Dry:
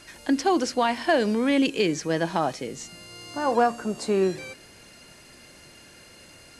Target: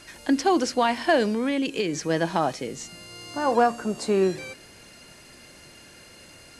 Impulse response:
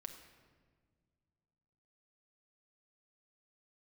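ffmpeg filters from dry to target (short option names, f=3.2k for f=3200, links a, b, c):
-filter_complex "[0:a]asettb=1/sr,asplit=3[a][b][c];[a]atrim=end=1.244[d];[b]atrim=start=1.24:end=1.94,asetpts=PTS-STARTPTS,afade=t=in:d=0.004:c=qsin,afade=t=out:st=0.696:d=0.004:c=qsin,acompressor=threshold=-23dB:ratio=6[e];[c]atrim=start=1.936[f];[d][e]acrossfade=d=0.004:c1=hsin:c2=qsin[g];[g][f]acrossfade=d=0.004:c1=qsin:c2=hsin,volume=1dB"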